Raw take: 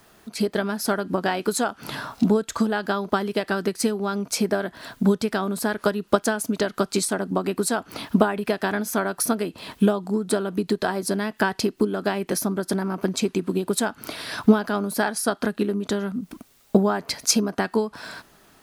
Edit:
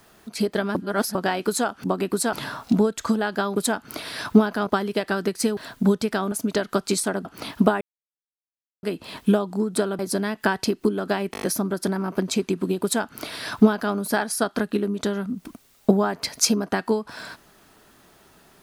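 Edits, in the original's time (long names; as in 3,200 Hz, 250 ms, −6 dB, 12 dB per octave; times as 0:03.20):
0:00.75–0:01.15: reverse
0:03.97–0:04.77: remove
0:05.52–0:06.37: remove
0:07.30–0:07.79: move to 0:01.84
0:08.35–0:09.37: silence
0:10.53–0:10.95: remove
0:12.28: stutter 0.02 s, 6 plays
0:13.69–0:14.80: duplicate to 0:03.07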